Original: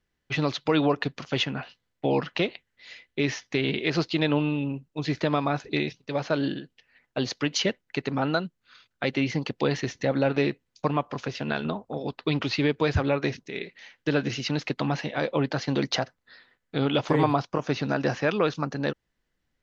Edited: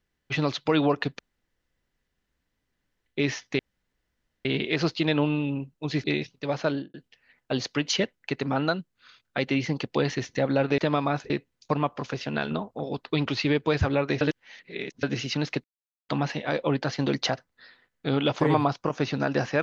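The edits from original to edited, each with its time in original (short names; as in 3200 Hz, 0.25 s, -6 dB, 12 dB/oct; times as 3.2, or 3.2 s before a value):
1.19–3.06 room tone
3.59 insert room tone 0.86 s
5.18–5.7 move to 10.44
6.32–6.6 studio fade out
13.35–14.17 reverse
14.78 insert silence 0.45 s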